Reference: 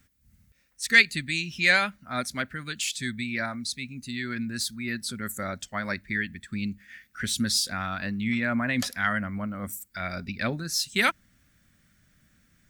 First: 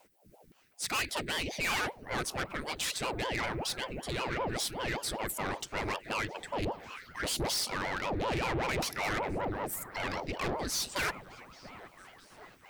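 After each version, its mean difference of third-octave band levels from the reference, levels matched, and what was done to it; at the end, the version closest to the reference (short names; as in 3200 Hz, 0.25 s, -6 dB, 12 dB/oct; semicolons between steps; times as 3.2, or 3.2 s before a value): 13.0 dB: notch 6900 Hz; tube stage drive 31 dB, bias 0.25; on a send: delay with a stepping band-pass 0.672 s, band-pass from 420 Hz, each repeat 0.7 oct, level -9 dB; on the sum: ring modulator with a swept carrier 440 Hz, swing 80%, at 5.2 Hz; gain +4.5 dB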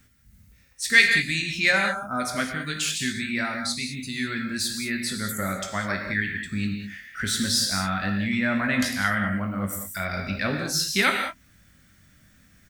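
6.5 dB: spectral gain 1.71–2.2, 1600–5100 Hz -26 dB; in parallel at -1 dB: compressor, threshold -36 dBFS, peak gain reduction 22 dB; on the sum: doubler 20 ms -8.5 dB; non-linear reverb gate 0.23 s flat, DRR 3 dB; gain -1 dB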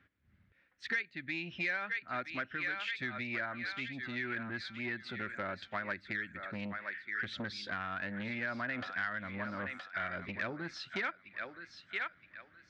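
9.5 dB: speaker cabinet 120–3000 Hz, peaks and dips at 150 Hz -8 dB, 230 Hz -8 dB, 330 Hz +4 dB, 1600 Hz +4 dB, 2700 Hz -3 dB; on a send: thinning echo 0.971 s, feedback 34%, high-pass 900 Hz, level -9 dB; on the sum: compressor 6:1, threshold -33 dBFS, peak gain reduction 20 dB; core saturation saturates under 1100 Hz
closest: second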